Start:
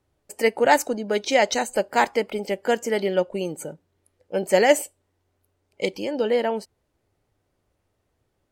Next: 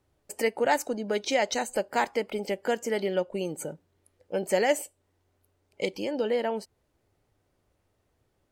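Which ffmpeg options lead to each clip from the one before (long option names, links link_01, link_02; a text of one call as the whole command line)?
ffmpeg -i in.wav -af "acompressor=threshold=-33dB:ratio=1.5" out.wav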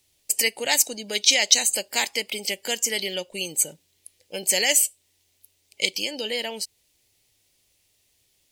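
ffmpeg -i in.wav -af "aexciter=amount=11.4:drive=3.5:freq=2100,volume=-5dB" out.wav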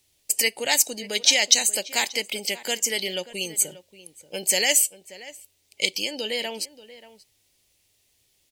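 ffmpeg -i in.wav -filter_complex "[0:a]asplit=2[link_01][link_02];[link_02]adelay=583.1,volume=-16dB,highshelf=frequency=4000:gain=-13.1[link_03];[link_01][link_03]amix=inputs=2:normalize=0" out.wav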